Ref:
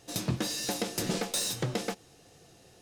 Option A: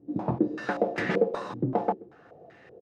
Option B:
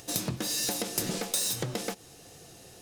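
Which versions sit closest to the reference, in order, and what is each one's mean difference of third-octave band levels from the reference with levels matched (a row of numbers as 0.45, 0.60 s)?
B, A; 3.5, 13.5 dB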